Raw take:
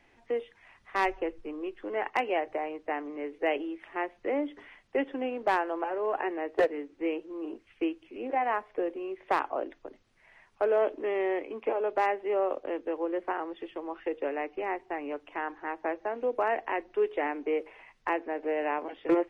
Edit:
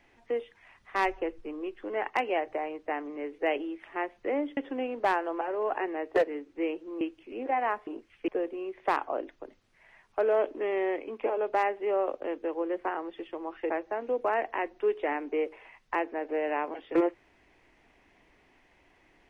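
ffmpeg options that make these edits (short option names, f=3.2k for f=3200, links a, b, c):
-filter_complex "[0:a]asplit=6[a][b][c][d][e][f];[a]atrim=end=4.572[g];[b]atrim=start=4.998:end=7.442[h];[c]atrim=start=7.848:end=8.712[i];[d]atrim=start=7.438:end=7.852[j];[e]atrim=start=8.708:end=14.132[k];[f]atrim=start=15.838[l];[g][h]acrossfade=d=0.004:c1=hsin:c2=hsin[m];[m][i]acrossfade=d=0.004:c1=hsin:c2=hsin[n];[n][j]acrossfade=d=0.004:c1=hsin:c2=hsin[o];[o][k]acrossfade=d=0.004:c1=hsin:c2=hsin[p];[p][l]acrossfade=d=0.004:c1=hsin:c2=hsin"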